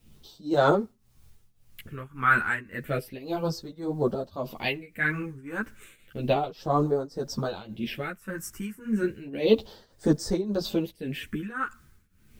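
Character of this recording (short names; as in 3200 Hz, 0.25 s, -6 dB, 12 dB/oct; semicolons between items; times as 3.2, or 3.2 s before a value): phasing stages 4, 0.32 Hz, lowest notch 630–2600 Hz; a quantiser's noise floor 12-bit, dither triangular; tremolo triangle 1.8 Hz, depth 90%; a shimmering, thickened sound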